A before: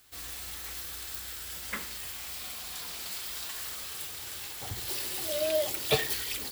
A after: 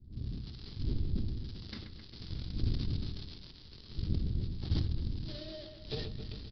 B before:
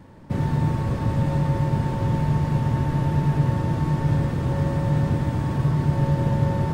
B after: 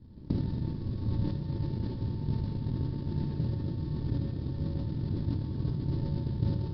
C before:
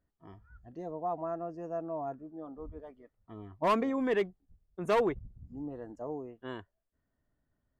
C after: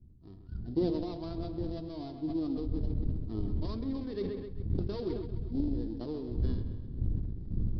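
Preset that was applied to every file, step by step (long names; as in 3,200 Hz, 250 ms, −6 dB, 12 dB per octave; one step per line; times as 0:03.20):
gap after every zero crossing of 0.11 ms
wind on the microphone 110 Hz −41 dBFS
camcorder AGC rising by 26 dB per second
flat-topped bell 1,200 Hz −15.5 dB 2.8 octaves
harmonic and percussive parts rebalanced harmonic +3 dB
dynamic equaliser 150 Hz, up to −7 dB, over −32 dBFS, Q 1.7
transient designer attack +10 dB, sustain −3 dB
flanger 1.3 Hz, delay 8.5 ms, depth 2.4 ms, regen −74%
on a send: delay with a low-pass on its return 132 ms, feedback 59%, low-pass 3,600 Hz, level −9 dB
on the sum: downsampling to 11,025 Hz
level that may fall only so fast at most 38 dB per second
level −8.5 dB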